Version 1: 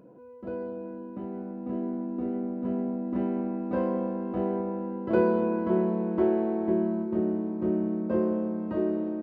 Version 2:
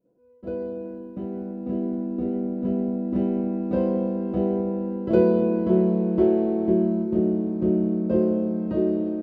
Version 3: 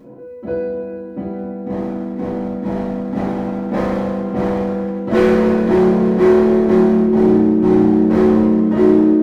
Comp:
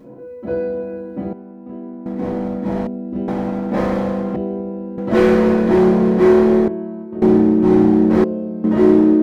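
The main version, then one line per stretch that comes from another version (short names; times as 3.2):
3
1.33–2.06 from 1
2.87–3.28 from 2
4.36–4.98 from 2
6.68–7.22 from 1
8.24–8.64 from 2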